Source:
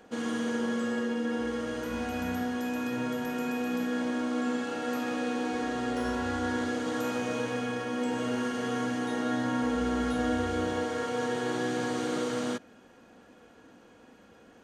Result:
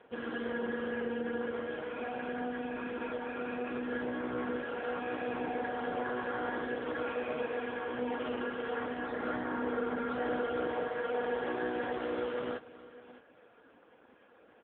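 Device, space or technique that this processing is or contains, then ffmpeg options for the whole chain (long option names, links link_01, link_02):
satellite phone: -filter_complex "[0:a]asettb=1/sr,asplit=3[link_01][link_02][link_03];[link_01]atrim=end=9.054[link_04];[link_02]atrim=start=9.05:end=10.11,asetpts=PTS-STARTPTS,afade=type=in:duration=0.004:curve=qsin,afade=type=out:start_time=1.056:duration=0.004:curve=qsin,equalizer=frequency=3000:width=5.8:gain=-5.5[link_05];[link_03]atrim=start=10.106[link_06];[link_04][link_05]acrossfade=duration=0.004:curve1=hsin:curve2=qsin[link_07];[link_07][link_06]acrossfade=duration=0.004:curve1=qsin:curve2=hsin,highpass=360,lowpass=3100,aecho=1:1:609:0.133,volume=1dB" -ar 8000 -c:a libopencore_amrnb -b:a 5150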